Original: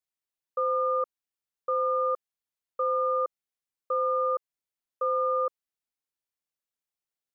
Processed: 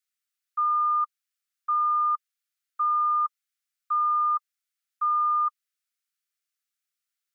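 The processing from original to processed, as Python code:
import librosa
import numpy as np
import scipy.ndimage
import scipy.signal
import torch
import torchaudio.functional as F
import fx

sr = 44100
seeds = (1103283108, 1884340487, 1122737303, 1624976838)

y = scipy.signal.sosfilt(scipy.signal.cheby1(8, 1.0, 1200.0, 'highpass', fs=sr, output='sos'), x)
y = F.gain(torch.from_numpy(y), 6.0).numpy()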